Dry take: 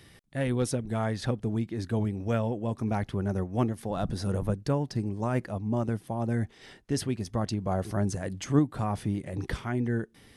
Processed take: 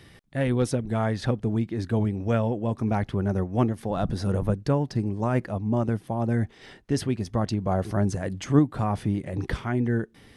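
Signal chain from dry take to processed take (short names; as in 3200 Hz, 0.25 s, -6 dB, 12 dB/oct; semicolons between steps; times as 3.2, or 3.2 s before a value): high shelf 5500 Hz -7.5 dB; gain +4 dB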